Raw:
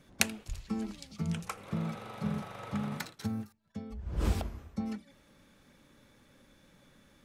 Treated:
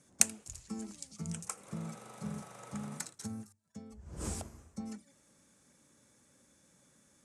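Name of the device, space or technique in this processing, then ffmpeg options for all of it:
budget condenser microphone: -af "highpass=74,lowpass=f=9.9k:w=0.5412,lowpass=f=9.9k:w=1.3066,highshelf=f=5.3k:t=q:w=1.5:g=13.5,bandreject=f=50:t=h:w=6,bandreject=f=100:t=h:w=6,volume=-6.5dB"

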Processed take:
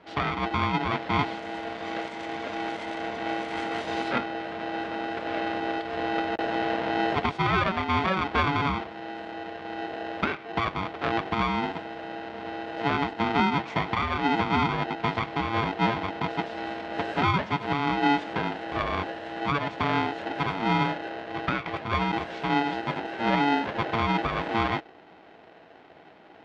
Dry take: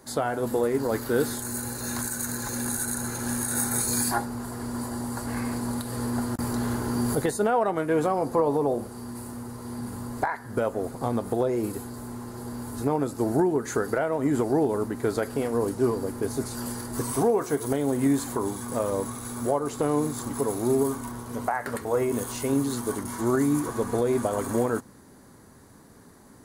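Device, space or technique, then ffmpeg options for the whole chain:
ring modulator pedal into a guitar cabinet: -af "aeval=exprs='val(0)*sgn(sin(2*PI*570*n/s))':c=same,highpass=84,equalizer=f=120:t=q:w=4:g=-4,equalizer=f=610:t=q:w=4:g=7,equalizer=f=980:t=q:w=4:g=-3,lowpass=f=3.5k:w=0.5412,lowpass=f=3.5k:w=1.3066"

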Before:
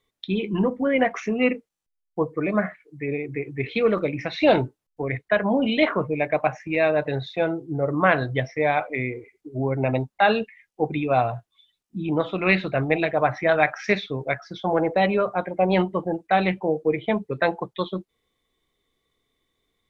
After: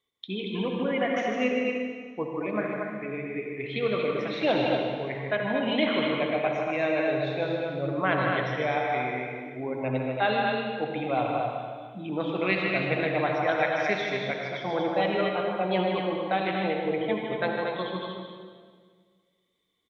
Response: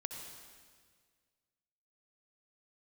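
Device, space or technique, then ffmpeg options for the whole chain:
stadium PA: -filter_complex "[0:a]highpass=f=150:p=1,equalizer=f=3.2k:t=o:w=0.25:g=7.5,aecho=1:1:154.5|233.2:0.501|0.562[a];[1:a]atrim=start_sample=2205[b];[a][b]afir=irnorm=-1:irlink=0,volume=-4.5dB"

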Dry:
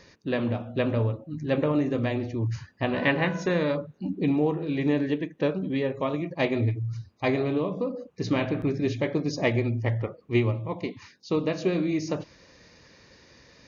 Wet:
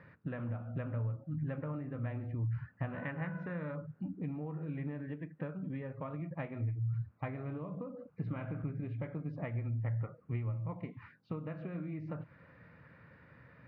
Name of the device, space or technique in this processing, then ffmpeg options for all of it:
bass amplifier: -filter_complex "[0:a]acompressor=threshold=-35dB:ratio=5,highpass=79,equalizer=f=79:t=q:w=4:g=7,equalizer=f=120:t=q:w=4:g=9,equalizer=f=160:t=q:w=4:g=8,equalizer=f=380:t=q:w=4:g=-8,equalizer=f=1.4k:t=q:w=4:g=9,lowpass=f=2.2k:w=0.5412,lowpass=f=2.2k:w=1.3066,asettb=1/sr,asplit=3[a][b][c];[a]atrim=end=7.874[d];[b]atrim=start=7.87:end=9.28,asetpts=PTS-STARTPTS,afade=t=in:d=0.004:c=qsin,afade=t=out:st=1.406:d=0.004:c=qsin,bandreject=f=1.8k:w=11[e];[c]atrim=start=9.276[f];[d][e]acrossfade=d=0.004:c1=hsin:c2=qsin[g];[g][f]acrossfade=d=0.004:c1=qsin:c2=hsin,volume=-5dB"

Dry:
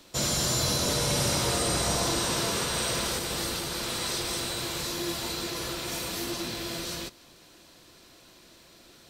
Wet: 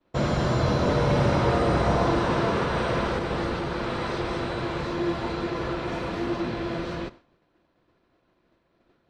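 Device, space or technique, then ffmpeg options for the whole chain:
hearing-loss simulation: -af "lowpass=1.6k,agate=range=-33dB:threshold=-46dB:ratio=3:detection=peak,volume=7.5dB"

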